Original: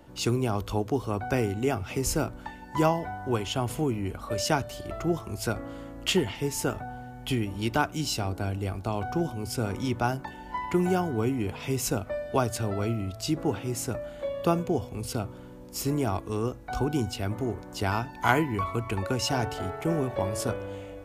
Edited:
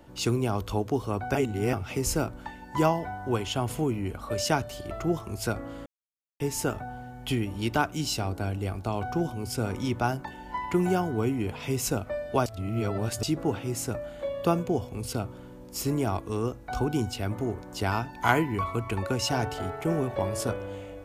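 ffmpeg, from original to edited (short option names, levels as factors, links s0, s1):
-filter_complex "[0:a]asplit=7[s0][s1][s2][s3][s4][s5][s6];[s0]atrim=end=1.352[s7];[s1]atrim=start=1.348:end=1.732,asetpts=PTS-STARTPTS,areverse[s8];[s2]atrim=start=1.728:end=5.86,asetpts=PTS-STARTPTS,afade=t=out:st=4.128:d=0.004:c=hsin[s9];[s3]atrim=start=5.86:end=6.4,asetpts=PTS-STARTPTS,volume=0[s10];[s4]atrim=start=6.4:end=12.462,asetpts=PTS-STARTPTS,afade=t=in:d=0.004:c=hsin[s11];[s5]atrim=start=12.458:end=13.232,asetpts=PTS-STARTPTS,areverse[s12];[s6]atrim=start=13.228[s13];[s7][s8]acrossfade=d=0.004:c1=hsin:c2=hsin[s14];[s9][s10][s11]concat=n=3:v=0:a=1[s15];[s14][s15]acrossfade=d=0.004:c1=hsin:c2=hsin[s16];[s16][s12]acrossfade=d=0.004:c1=hsin:c2=hsin[s17];[s17][s13]acrossfade=d=0.004:c1=hsin:c2=hsin"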